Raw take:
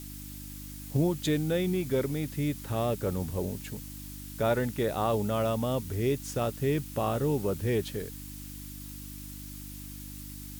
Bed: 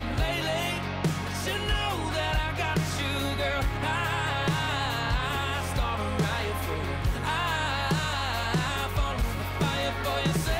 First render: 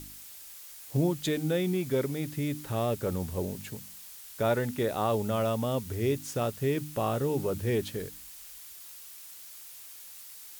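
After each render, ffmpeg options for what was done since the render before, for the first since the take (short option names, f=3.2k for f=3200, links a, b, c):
-af "bandreject=f=50:t=h:w=4,bandreject=f=100:t=h:w=4,bandreject=f=150:t=h:w=4,bandreject=f=200:t=h:w=4,bandreject=f=250:t=h:w=4,bandreject=f=300:t=h:w=4"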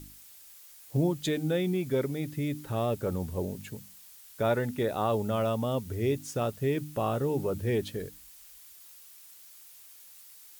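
-af "afftdn=nr=6:nf=-47"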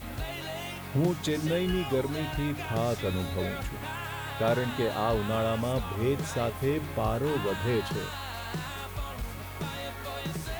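-filter_complex "[1:a]volume=-8.5dB[a];[0:a][a]amix=inputs=2:normalize=0"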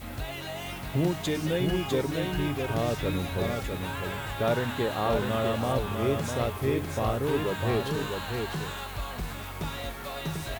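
-af "aecho=1:1:652:0.562"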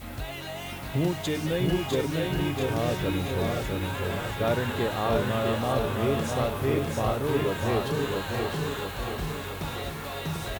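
-af "aecho=1:1:683|1366|2049|2732|3415|4098|4781:0.501|0.276|0.152|0.0834|0.0459|0.0252|0.0139"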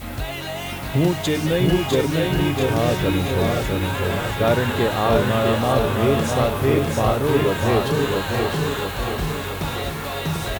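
-af "volume=7.5dB"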